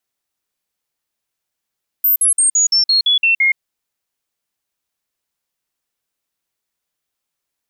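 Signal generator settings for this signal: stepped sine 13.6 kHz down, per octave 3, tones 9, 0.12 s, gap 0.05 s -10 dBFS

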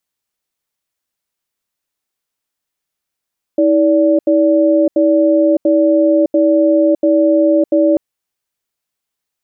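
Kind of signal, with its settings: cadence 321 Hz, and 579 Hz, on 0.61 s, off 0.08 s, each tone -11 dBFS 4.39 s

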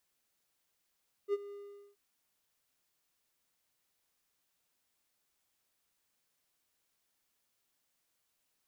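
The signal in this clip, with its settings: ADSR triangle 405 Hz, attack 54 ms, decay 33 ms, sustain -17 dB, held 0.24 s, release 439 ms -24.5 dBFS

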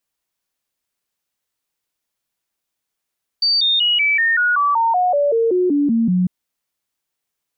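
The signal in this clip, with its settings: stepped sine 4.61 kHz down, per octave 3, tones 15, 0.19 s, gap 0.00 s -13 dBFS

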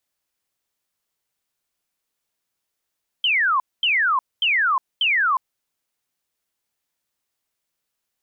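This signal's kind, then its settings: burst of laser zaps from 3.2 kHz, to 990 Hz, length 0.36 s sine, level -16 dB, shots 4, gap 0.23 s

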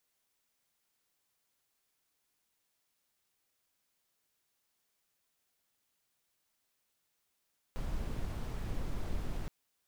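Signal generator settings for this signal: noise brown, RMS -35.5 dBFS 1.72 s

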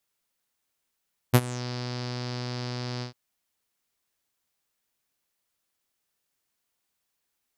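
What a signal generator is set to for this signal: synth note saw B2 12 dB/octave, low-pass 4.9 kHz, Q 5.5, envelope 1.5 oct, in 0.29 s, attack 20 ms, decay 0.05 s, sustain -19.5 dB, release 0.11 s, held 1.69 s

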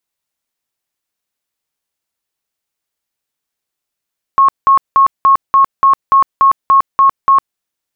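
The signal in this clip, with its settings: tone bursts 1.09 kHz, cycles 115, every 0.29 s, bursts 11, -4.5 dBFS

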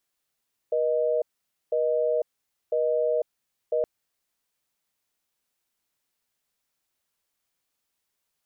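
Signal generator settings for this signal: call progress tone busy tone, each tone -24 dBFS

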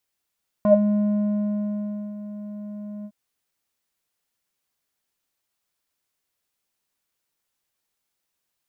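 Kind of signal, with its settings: synth note square G#3 12 dB/octave, low-pass 420 Hz, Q 11, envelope 1 oct, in 0.17 s, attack 1.1 ms, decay 1.49 s, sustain -15.5 dB, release 0.06 s, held 2.40 s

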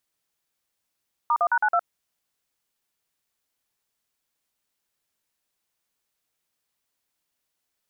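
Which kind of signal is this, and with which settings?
DTMF "*1#92", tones 62 ms, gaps 46 ms, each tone -20.5 dBFS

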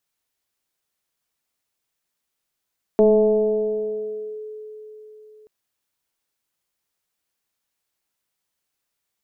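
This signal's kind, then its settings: FM tone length 2.48 s, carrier 429 Hz, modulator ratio 0.51, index 0.89, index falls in 1.42 s linear, decay 4.09 s, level -10 dB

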